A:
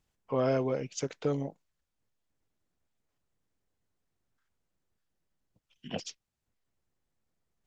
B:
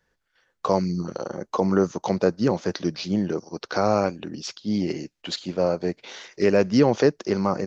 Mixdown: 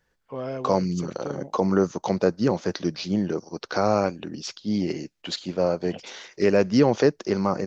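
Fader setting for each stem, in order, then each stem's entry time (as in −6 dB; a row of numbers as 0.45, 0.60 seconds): −4.0, −0.5 decibels; 0.00, 0.00 seconds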